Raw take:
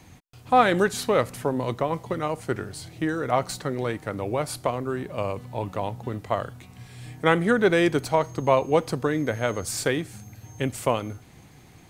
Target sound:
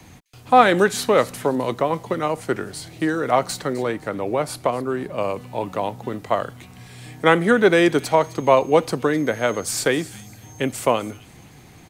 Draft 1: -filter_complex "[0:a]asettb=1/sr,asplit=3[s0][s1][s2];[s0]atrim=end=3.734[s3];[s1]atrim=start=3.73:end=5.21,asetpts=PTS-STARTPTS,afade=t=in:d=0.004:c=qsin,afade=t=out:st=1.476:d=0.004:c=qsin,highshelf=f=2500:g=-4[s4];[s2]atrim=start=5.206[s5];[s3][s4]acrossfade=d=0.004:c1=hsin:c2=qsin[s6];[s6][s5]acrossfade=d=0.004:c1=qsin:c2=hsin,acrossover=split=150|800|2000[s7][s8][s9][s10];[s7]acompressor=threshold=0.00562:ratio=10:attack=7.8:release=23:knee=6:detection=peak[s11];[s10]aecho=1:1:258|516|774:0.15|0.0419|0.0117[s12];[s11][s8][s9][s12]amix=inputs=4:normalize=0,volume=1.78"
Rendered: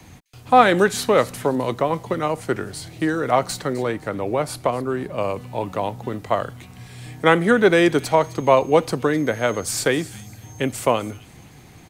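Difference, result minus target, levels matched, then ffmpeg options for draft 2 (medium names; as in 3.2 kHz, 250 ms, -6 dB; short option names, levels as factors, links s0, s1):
compression: peak gain reduction -7 dB
-filter_complex "[0:a]asettb=1/sr,asplit=3[s0][s1][s2];[s0]atrim=end=3.734[s3];[s1]atrim=start=3.73:end=5.21,asetpts=PTS-STARTPTS,afade=t=in:d=0.004:c=qsin,afade=t=out:st=1.476:d=0.004:c=qsin,highshelf=f=2500:g=-4[s4];[s2]atrim=start=5.206[s5];[s3][s4]acrossfade=d=0.004:c1=hsin:c2=qsin[s6];[s6][s5]acrossfade=d=0.004:c1=qsin:c2=hsin,acrossover=split=150|800|2000[s7][s8][s9][s10];[s7]acompressor=threshold=0.00224:ratio=10:attack=7.8:release=23:knee=6:detection=peak[s11];[s10]aecho=1:1:258|516|774:0.15|0.0419|0.0117[s12];[s11][s8][s9][s12]amix=inputs=4:normalize=0,volume=1.78"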